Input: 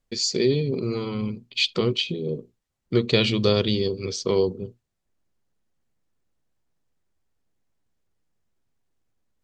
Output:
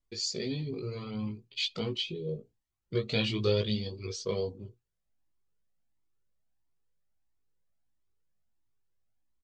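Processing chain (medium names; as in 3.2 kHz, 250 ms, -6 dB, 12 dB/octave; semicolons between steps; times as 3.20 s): doubling 19 ms -4 dB; Shepard-style flanger rising 1.5 Hz; trim -6 dB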